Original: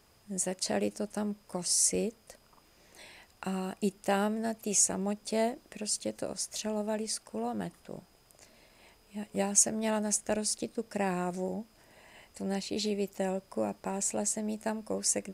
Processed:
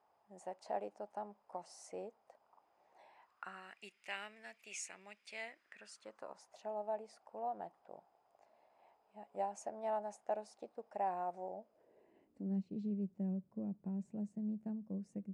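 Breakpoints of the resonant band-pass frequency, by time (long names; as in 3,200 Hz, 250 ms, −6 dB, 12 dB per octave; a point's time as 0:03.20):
resonant band-pass, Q 3.6
0:03.10 810 Hz
0:03.81 2,300 Hz
0:05.40 2,300 Hz
0:06.55 780 Hz
0:11.44 780 Hz
0:12.70 180 Hz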